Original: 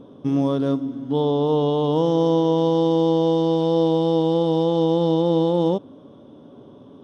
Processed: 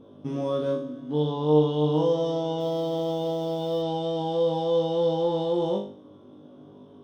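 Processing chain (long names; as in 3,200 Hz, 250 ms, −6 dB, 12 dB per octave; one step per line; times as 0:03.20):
on a send: flutter between parallel walls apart 3.4 metres, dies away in 0.46 s
0:02.59–0:03.81: on the sum: background noise white −55 dBFS
level −7.5 dB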